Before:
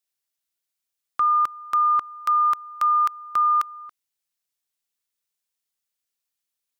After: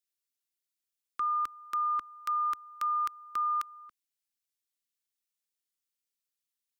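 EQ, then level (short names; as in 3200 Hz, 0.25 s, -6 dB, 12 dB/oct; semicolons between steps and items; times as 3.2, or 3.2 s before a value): fixed phaser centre 300 Hz, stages 4; -5.5 dB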